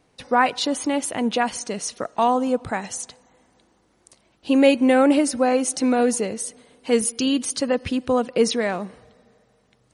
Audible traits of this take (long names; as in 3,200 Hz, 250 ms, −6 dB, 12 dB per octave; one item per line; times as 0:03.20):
background noise floor −63 dBFS
spectral slope −3.0 dB per octave